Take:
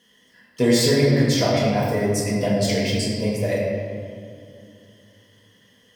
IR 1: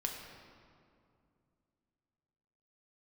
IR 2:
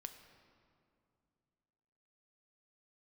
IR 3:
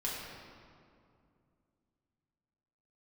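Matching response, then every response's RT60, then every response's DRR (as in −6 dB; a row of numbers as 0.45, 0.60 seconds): 3; 2.4, 2.5, 2.4 seconds; 0.5, 7.0, −6.5 decibels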